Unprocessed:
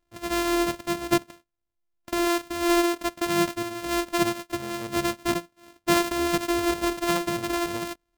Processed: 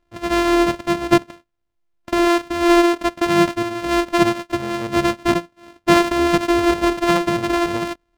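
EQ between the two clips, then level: treble shelf 5.5 kHz -10 dB; treble shelf 11 kHz -6 dB; +8.5 dB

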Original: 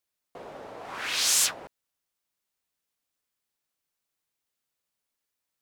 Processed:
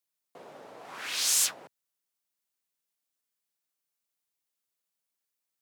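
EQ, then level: high-pass 120 Hz 24 dB/octave; treble shelf 5 kHz +6 dB; -6.0 dB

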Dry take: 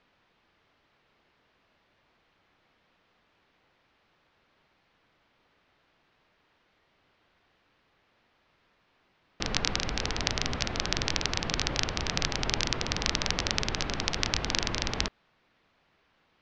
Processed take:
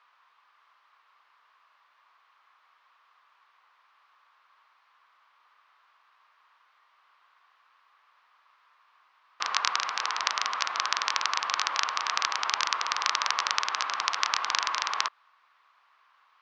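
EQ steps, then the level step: resonant high-pass 1.1 kHz, resonance Q 5; 0.0 dB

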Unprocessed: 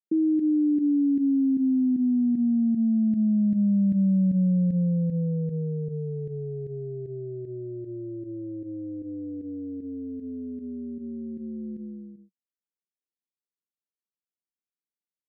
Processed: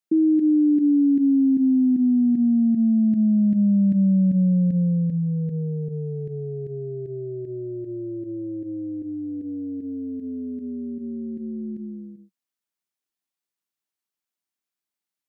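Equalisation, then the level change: bass shelf 140 Hz -8.5 dB; peaking EQ 480 Hz -4.5 dB 0.39 oct; band-stop 500 Hz, Q 12; +6.5 dB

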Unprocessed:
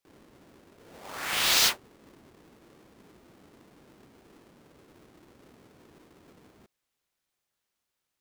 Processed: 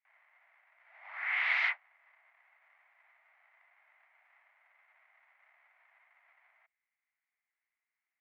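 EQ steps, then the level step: steep high-pass 650 Hz 72 dB/octave; four-pole ladder low-pass 2.2 kHz, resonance 80%; distance through air 54 m; +2.5 dB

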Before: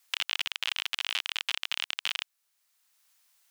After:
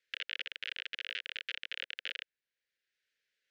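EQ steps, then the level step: elliptic band-stop 510–1600 Hz, stop band 80 dB; dynamic bell 1.1 kHz, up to +3 dB, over -52 dBFS, Q 1.1; tape spacing loss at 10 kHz 37 dB; +2.5 dB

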